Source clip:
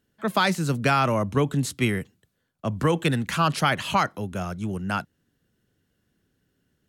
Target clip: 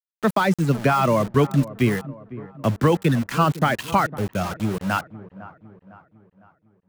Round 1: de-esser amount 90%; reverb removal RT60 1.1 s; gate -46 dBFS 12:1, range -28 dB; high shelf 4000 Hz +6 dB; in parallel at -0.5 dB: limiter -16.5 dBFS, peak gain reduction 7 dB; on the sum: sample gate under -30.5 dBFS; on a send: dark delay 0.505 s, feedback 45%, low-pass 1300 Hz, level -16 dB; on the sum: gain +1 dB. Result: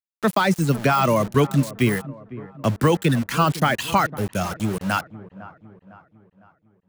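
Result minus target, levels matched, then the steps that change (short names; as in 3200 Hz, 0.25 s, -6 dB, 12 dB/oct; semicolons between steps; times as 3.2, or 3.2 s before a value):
8000 Hz band +4.5 dB
change: high shelf 4000 Hz -4 dB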